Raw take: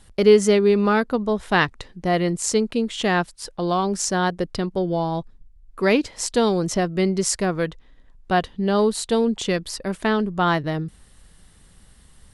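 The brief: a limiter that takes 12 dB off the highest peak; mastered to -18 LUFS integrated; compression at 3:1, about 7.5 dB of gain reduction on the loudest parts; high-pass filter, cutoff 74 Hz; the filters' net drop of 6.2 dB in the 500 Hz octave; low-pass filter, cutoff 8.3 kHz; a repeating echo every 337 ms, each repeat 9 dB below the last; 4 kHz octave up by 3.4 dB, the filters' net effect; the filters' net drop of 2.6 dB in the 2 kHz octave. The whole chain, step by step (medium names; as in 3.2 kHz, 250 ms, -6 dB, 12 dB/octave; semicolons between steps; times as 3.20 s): high-pass 74 Hz; low-pass 8.3 kHz; peaking EQ 500 Hz -8 dB; peaking EQ 2 kHz -4 dB; peaking EQ 4 kHz +6 dB; compression 3:1, threshold -23 dBFS; peak limiter -20 dBFS; feedback delay 337 ms, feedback 35%, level -9 dB; trim +11.5 dB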